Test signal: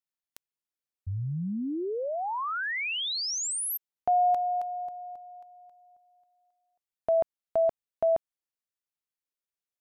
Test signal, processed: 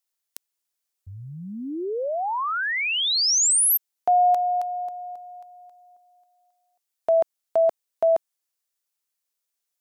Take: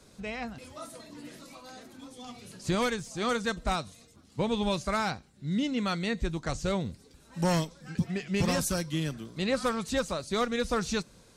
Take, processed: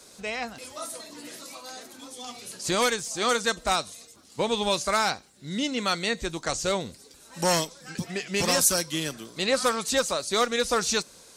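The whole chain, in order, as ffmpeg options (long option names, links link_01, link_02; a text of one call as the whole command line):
ffmpeg -i in.wav -af "bass=frequency=250:gain=-13,treble=frequency=4000:gain=7,volume=5.5dB" out.wav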